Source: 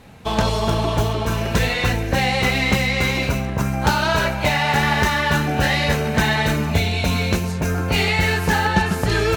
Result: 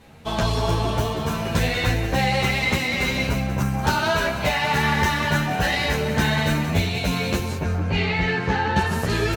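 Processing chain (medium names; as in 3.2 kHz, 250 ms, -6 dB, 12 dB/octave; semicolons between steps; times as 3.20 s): 7.58–8.76 s: distance through air 170 m; frequency-shifting echo 187 ms, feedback 32%, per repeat +38 Hz, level -11 dB; endless flanger 10.7 ms +0.79 Hz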